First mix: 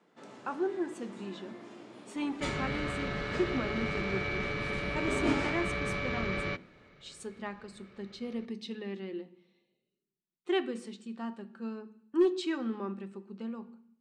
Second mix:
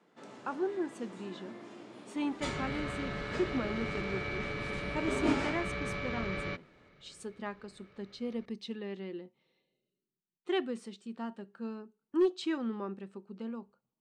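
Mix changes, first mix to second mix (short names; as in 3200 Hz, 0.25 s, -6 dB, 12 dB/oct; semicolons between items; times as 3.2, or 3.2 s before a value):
second sound -3.0 dB; reverb: off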